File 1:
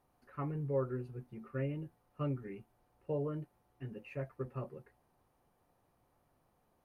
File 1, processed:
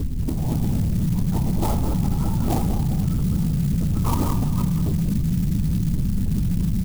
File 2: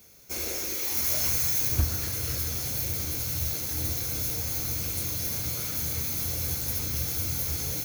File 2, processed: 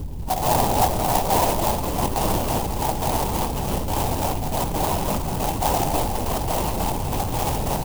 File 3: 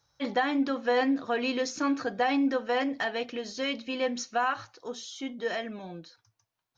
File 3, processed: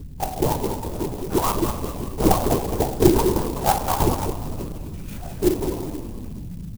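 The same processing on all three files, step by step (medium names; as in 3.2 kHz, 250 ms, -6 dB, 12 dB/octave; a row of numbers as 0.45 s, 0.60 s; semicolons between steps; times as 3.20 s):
four frequency bands reordered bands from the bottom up 2341; high-order bell 540 Hz +9 dB; in parallel at -2 dB: compression, threshold -38 dBFS; on the sum: trance gate "..x.xx.x" 139 bpm -12 dB; mains buzz 50 Hz, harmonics 6, -42 dBFS -8 dB/octave; distance through air 280 m; static phaser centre 370 Hz, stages 8; on a send: feedback delay 207 ms, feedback 33%, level -6 dB; on the sum: simulated room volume 970 m³, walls mixed, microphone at 1 m; LPC vocoder at 8 kHz whisper; sampling jitter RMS 0.081 ms; normalise loudness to -23 LUFS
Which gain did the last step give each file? +24.5 dB, +18.5 dB, +12.0 dB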